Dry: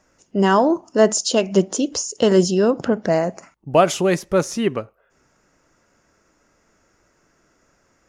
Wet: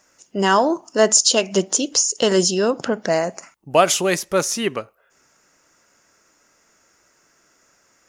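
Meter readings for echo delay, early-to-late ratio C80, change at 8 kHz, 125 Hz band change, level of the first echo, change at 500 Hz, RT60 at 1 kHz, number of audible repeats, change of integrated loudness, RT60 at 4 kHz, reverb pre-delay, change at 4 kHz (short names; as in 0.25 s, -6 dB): none, none, +8.0 dB, -5.0 dB, none, -1.5 dB, none, none, +0.5 dB, none, none, +6.0 dB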